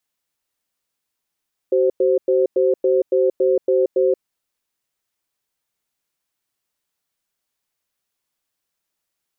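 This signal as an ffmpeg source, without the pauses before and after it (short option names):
-f lavfi -i "aevalsrc='0.158*(sin(2*PI*379*t)+sin(2*PI*523*t))*clip(min(mod(t,0.28),0.18-mod(t,0.28))/0.005,0,1)':d=2.46:s=44100"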